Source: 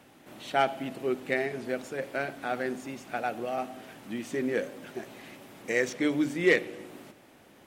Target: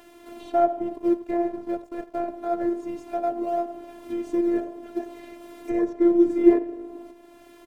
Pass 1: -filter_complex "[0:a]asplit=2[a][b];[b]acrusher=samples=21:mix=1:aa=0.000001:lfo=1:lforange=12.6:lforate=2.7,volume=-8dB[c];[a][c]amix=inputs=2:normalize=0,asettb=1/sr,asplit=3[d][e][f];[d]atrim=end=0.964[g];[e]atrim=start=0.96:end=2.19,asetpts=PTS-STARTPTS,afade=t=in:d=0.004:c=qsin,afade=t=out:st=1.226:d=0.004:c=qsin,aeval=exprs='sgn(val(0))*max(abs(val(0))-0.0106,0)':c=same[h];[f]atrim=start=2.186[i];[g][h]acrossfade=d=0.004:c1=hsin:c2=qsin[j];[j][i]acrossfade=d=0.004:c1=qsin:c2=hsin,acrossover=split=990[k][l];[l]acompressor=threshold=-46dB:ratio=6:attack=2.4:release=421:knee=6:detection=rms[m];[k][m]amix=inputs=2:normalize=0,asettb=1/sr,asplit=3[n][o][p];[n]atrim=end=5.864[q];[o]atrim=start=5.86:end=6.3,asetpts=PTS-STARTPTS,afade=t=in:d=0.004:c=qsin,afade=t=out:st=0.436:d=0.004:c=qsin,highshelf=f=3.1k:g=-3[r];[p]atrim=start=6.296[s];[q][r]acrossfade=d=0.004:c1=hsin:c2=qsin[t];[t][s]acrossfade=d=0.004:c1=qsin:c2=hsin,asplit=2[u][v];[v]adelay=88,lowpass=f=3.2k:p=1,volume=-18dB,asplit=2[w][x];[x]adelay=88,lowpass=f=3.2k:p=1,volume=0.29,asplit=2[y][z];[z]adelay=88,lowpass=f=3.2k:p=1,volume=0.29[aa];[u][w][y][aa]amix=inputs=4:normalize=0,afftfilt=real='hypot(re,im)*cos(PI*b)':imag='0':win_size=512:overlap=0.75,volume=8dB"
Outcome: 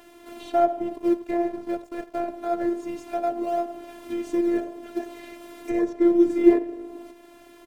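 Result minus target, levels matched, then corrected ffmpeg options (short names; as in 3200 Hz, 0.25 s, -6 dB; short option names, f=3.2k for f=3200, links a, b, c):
compressor: peak gain reduction -6 dB
-filter_complex "[0:a]asplit=2[a][b];[b]acrusher=samples=21:mix=1:aa=0.000001:lfo=1:lforange=12.6:lforate=2.7,volume=-8dB[c];[a][c]amix=inputs=2:normalize=0,asettb=1/sr,asplit=3[d][e][f];[d]atrim=end=0.964[g];[e]atrim=start=0.96:end=2.19,asetpts=PTS-STARTPTS,afade=t=in:d=0.004:c=qsin,afade=t=out:st=1.226:d=0.004:c=qsin,aeval=exprs='sgn(val(0))*max(abs(val(0))-0.0106,0)':c=same[h];[f]atrim=start=2.186[i];[g][h]acrossfade=d=0.004:c1=hsin:c2=qsin[j];[j][i]acrossfade=d=0.004:c1=qsin:c2=hsin,acrossover=split=990[k][l];[l]acompressor=threshold=-53dB:ratio=6:attack=2.4:release=421:knee=6:detection=rms[m];[k][m]amix=inputs=2:normalize=0,asettb=1/sr,asplit=3[n][o][p];[n]atrim=end=5.864[q];[o]atrim=start=5.86:end=6.3,asetpts=PTS-STARTPTS,afade=t=in:d=0.004:c=qsin,afade=t=out:st=0.436:d=0.004:c=qsin,highshelf=f=3.1k:g=-3[r];[p]atrim=start=6.296[s];[q][r]acrossfade=d=0.004:c1=hsin:c2=qsin[t];[t][s]acrossfade=d=0.004:c1=qsin:c2=hsin,asplit=2[u][v];[v]adelay=88,lowpass=f=3.2k:p=1,volume=-18dB,asplit=2[w][x];[x]adelay=88,lowpass=f=3.2k:p=1,volume=0.29,asplit=2[y][z];[z]adelay=88,lowpass=f=3.2k:p=1,volume=0.29[aa];[u][w][y][aa]amix=inputs=4:normalize=0,afftfilt=real='hypot(re,im)*cos(PI*b)':imag='0':win_size=512:overlap=0.75,volume=8dB"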